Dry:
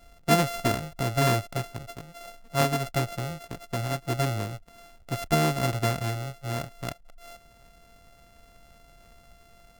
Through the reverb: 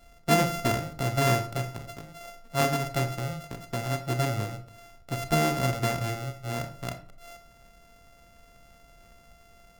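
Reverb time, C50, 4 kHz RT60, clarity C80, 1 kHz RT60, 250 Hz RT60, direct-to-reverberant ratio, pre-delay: 0.50 s, 11.5 dB, 0.30 s, 16.0 dB, 0.45 s, 0.65 s, 8.0 dB, 27 ms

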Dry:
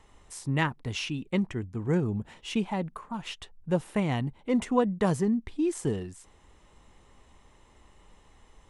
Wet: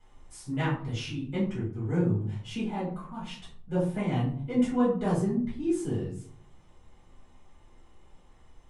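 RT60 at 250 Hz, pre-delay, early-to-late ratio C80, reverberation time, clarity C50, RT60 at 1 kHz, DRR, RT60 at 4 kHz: 0.70 s, 5 ms, 9.0 dB, 0.60 s, 5.5 dB, 0.50 s, -9.5 dB, 0.30 s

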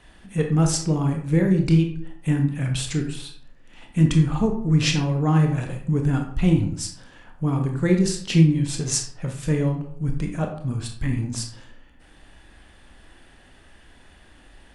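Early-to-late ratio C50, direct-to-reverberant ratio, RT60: 6.5 dB, 3.0 dB, 0.60 s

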